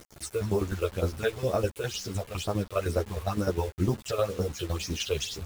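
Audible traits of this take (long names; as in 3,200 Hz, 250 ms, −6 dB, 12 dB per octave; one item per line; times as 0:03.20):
phaser sweep stages 8, 2.1 Hz, lowest notch 220–3,100 Hz
tremolo saw down 9.8 Hz, depth 80%
a quantiser's noise floor 8 bits, dither none
a shimmering, thickened sound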